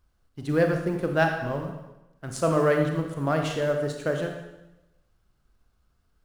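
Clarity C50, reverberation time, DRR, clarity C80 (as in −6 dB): 5.0 dB, 0.95 s, 3.5 dB, 7.0 dB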